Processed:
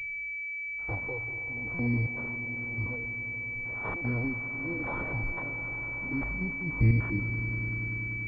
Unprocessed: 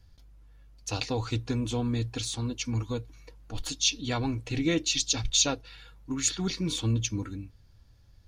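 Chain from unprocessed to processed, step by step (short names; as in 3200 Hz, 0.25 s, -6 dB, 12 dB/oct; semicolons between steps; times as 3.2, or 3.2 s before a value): stepped spectrum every 0.1 s; reverb removal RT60 0.78 s; 6.23–6.91 tilt -3.5 dB/oct; in parallel at -3 dB: limiter -23 dBFS, peak gain reduction 11 dB; 0.95–1.4 on the sum: tube stage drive 30 dB, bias 0.7; 2.2–2.78 hard clip -34 dBFS, distortion -17 dB; envelope flanger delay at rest 8.2 ms, full sweep at -22.5 dBFS; tremolo 0.99 Hz, depth 88%; on a send: swelling echo 97 ms, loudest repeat 5, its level -16 dB; on the sum: stuck buffer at 1.74/3.96/5.32, samples 256, times 8; pulse-width modulation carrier 2300 Hz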